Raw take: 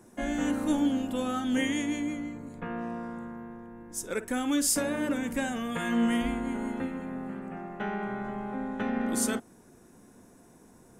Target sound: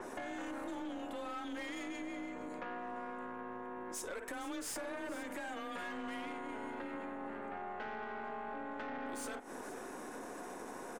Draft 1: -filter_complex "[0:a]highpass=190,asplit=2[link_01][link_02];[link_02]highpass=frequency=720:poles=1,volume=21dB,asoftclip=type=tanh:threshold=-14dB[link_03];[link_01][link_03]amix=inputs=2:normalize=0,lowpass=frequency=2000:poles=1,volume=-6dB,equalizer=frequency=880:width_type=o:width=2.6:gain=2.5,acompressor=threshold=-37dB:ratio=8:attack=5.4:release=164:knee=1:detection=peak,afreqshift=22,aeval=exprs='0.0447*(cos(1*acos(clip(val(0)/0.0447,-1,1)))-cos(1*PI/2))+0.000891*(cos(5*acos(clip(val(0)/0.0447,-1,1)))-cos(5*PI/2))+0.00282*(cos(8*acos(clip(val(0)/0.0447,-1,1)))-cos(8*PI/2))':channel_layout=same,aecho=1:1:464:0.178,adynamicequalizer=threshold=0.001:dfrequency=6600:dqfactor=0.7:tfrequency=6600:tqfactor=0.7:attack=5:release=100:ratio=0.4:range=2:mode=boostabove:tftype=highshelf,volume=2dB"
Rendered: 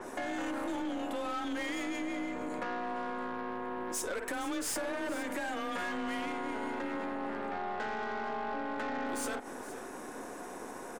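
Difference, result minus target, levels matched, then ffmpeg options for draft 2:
downward compressor: peak gain reduction −7 dB
-filter_complex "[0:a]highpass=190,asplit=2[link_01][link_02];[link_02]highpass=frequency=720:poles=1,volume=21dB,asoftclip=type=tanh:threshold=-14dB[link_03];[link_01][link_03]amix=inputs=2:normalize=0,lowpass=frequency=2000:poles=1,volume=-6dB,equalizer=frequency=880:width_type=o:width=2.6:gain=2.5,acompressor=threshold=-45dB:ratio=8:attack=5.4:release=164:knee=1:detection=peak,afreqshift=22,aeval=exprs='0.0447*(cos(1*acos(clip(val(0)/0.0447,-1,1)))-cos(1*PI/2))+0.000891*(cos(5*acos(clip(val(0)/0.0447,-1,1)))-cos(5*PI/2))+0.00282*(cos(8*acos(clip(val(0)/0.0447,-1,1)))-cos(8*PI/2))':channel_layout=same,aecho=1:1:464:0.178,adynamicequalizer=threshold=0.001:dfrequency=6600:dqfactor=0.7:tfrequency=6600:tqfactor=0.7:attack=5:release=100:ratio=0.4:range=2:mode=boostabove:tftype=highshelf,volume=2dB"

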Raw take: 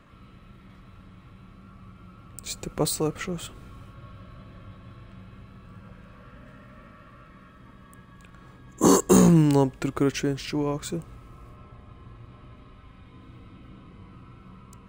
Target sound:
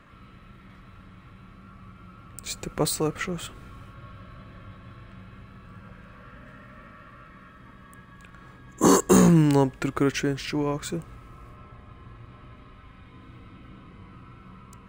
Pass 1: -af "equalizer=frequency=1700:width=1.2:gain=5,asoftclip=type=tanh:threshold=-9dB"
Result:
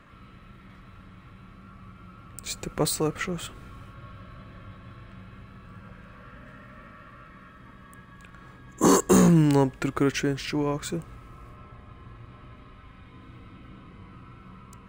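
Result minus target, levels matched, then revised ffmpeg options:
soft clipping: distortion +11 dB
-af "equalizer=frequency=1700:width=1.2:gain=5,asoftclip=type=tanh:threshold=-2.5dB"

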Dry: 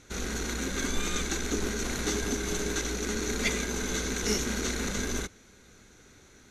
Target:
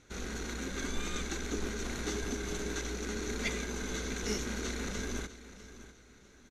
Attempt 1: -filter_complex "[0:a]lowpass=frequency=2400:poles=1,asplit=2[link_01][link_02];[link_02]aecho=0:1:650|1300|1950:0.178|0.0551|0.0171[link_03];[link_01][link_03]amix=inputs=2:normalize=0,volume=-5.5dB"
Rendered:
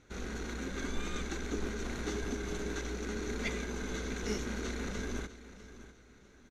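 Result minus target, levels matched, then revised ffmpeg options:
8,000 Hz band −4.5 dB
-filter_complex "[0:a]lowpass=frequency=5900:poles=1,asplit=2[link_01][link_02];[link_02]aecho=0:1:650|1300|1950:0.178|0.0551|0.0171[link_03];[link_01][link_03]amix=inputs=2:normalize=0,volume=-5.5dB"

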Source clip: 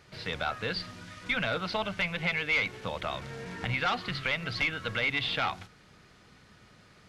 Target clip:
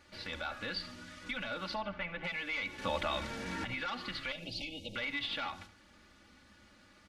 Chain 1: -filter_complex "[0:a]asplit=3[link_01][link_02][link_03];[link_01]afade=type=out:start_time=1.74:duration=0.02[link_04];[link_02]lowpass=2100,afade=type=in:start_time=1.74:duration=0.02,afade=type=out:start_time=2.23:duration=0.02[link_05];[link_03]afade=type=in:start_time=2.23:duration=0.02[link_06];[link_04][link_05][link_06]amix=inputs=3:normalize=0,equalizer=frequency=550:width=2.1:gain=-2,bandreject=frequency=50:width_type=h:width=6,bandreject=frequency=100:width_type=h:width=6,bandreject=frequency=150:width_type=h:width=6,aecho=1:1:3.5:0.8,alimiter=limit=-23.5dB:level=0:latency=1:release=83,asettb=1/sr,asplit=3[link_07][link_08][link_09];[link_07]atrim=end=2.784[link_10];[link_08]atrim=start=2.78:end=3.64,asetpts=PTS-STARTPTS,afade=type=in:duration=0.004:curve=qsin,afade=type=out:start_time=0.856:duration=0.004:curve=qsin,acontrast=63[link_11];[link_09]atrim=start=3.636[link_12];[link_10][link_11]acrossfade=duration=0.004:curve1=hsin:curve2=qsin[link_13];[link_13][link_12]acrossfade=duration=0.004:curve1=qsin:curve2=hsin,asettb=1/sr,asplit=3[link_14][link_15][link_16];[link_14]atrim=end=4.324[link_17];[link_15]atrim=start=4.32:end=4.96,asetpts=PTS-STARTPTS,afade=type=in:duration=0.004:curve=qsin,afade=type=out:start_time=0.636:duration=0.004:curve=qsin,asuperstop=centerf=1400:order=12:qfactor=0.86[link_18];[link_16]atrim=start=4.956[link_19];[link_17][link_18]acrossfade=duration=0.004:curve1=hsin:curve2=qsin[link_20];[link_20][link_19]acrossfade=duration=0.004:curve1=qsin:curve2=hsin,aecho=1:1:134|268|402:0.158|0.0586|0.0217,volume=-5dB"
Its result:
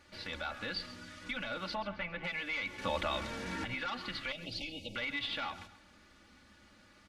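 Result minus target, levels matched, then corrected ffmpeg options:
echo 61 ms late
-filter_complex "[0:a]asplit=3[link_01][link_02][link_03];[link_01]afade=type=out:start_time=1.74:duration=0.02[link_04];[link_02]lowpass=2100,afade=type=in:start_time=1.74:duration=0.02,afade=type=out:start_time=2.23:duration=0.02[link_05];[link_03]afade=type=in:start_time=2.23:duration=0.02[link_06];[link_04][link_05][link_06]amix=inputs=3:normalize=0,equalizer=frequency=550:width=2.1:gain=-2,bandreject=frequency=50:width_type=h:width=6,bandreject=frequency=100:width_type=h:width=6,bandreject=frequency=150:width_type=h:width=6,aecho=1:1:3.5:0.8,alimiter=limit=-23.5dB:level=0:latency=1:release=83,asettb=1/sr,asplit=3[link_07][link_08][link_09];[link_07]atrim=end=2.784[link_10];[link_08]atrim=start=2.78:end=3.64,asetpts=PTS-STARTPTS,afade=type=in:duration=0.004:curve=qsin,afade=type=out:start_time=0.856:duration=0.004:curve=qsin,acontrast=63[link_11];[link_09]atrim=start=3.636[link_12];[link_10][link_11]acrossfade=duration=0.004:curve1=hsin:curve2=qsin[link_13];[link_13][link_12]acrossfade=duration=0.004:curve1=qsin:curve2=hsin,asettb=1/sr,asplit=3[link_14][link_15][link_16];[link_14]atrim=end=4.324[link_17];[link_15]atrim=start=4.32:end=4.96,asetpts=PTS-STARTPTS,afade=type=in:duration=0.004:curve=qsin,afade=type=out:start_time=0.636:duration=0.004:curve=qsin,asuperstop=centerf=1400:order=12:qfactor=0.86[link_18];[link_16]atrim=start=4.956[link_19];[link_17][link_18]acrossfade=duration=0.004:curve1=hsin:curve2=qsin[link_20];[link_20][link_19]acrossfade=duration=0.004:curve1=qsin:curve2=hsin,aecho=1:1:73|146|219:0.158|0.0586|0.0217,volume=-5dB"

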